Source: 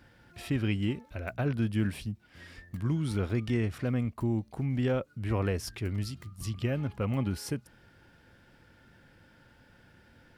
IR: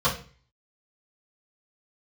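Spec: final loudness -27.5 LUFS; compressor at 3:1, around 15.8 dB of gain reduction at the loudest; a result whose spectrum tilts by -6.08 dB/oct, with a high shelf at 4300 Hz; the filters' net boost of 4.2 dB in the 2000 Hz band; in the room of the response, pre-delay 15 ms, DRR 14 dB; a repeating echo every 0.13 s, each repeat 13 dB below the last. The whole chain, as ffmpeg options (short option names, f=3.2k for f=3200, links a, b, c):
-filter_complex "[0:a]equalizer=f=2k:t=o:g=6,highshelf=f=4.3k:g=-3,acompressor=threshold=-47dB:ratio=3,aecho=1:1:130|260|390:0.224|0.0493|0.0108,asplit=2[a][b];[1:a]atrim=start_sample=2205,adelay=15[c];[b][c]afir=irnorm=-1:irlink=0,volume=-29dB[d];[a][d]amix=inputs=2:normalize=0,volume=19dB"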